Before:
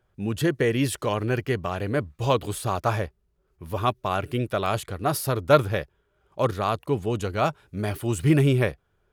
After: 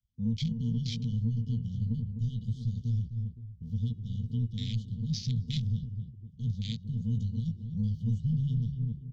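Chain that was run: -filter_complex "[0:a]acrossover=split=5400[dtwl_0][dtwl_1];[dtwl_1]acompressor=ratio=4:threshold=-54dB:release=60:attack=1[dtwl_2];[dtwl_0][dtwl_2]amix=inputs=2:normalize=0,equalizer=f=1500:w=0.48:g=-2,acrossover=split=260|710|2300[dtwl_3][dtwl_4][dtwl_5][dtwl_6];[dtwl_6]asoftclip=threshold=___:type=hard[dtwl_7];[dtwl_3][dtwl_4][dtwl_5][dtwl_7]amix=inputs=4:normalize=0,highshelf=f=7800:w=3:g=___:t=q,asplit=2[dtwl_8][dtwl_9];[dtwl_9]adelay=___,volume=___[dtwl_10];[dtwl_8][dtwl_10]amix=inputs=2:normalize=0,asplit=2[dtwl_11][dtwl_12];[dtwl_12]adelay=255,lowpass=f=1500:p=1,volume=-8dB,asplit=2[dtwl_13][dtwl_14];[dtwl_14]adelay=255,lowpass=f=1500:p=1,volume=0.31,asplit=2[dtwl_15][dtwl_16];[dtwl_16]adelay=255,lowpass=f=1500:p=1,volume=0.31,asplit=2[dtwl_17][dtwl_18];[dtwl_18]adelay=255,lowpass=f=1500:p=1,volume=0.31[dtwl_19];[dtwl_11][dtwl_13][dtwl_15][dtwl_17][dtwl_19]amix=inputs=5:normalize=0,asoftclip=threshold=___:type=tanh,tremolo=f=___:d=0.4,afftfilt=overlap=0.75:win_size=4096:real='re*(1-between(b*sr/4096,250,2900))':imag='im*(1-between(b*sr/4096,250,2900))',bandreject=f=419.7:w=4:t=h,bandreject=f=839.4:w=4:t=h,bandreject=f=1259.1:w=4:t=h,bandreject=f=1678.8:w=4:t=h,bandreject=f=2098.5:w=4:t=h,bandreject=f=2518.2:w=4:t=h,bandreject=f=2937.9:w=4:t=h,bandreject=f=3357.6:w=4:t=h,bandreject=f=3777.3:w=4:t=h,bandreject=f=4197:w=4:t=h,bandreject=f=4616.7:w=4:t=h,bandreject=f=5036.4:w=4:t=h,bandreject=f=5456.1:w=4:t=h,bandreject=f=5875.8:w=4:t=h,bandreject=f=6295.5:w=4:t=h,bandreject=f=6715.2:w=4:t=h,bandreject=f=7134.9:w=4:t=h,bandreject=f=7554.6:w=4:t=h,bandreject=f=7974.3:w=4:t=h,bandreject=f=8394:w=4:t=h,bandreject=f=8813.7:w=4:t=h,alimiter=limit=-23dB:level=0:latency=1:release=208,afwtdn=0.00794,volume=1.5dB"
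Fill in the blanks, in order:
-27.5dB, -10.5, 18, -6.5dB, -14.5dB, 120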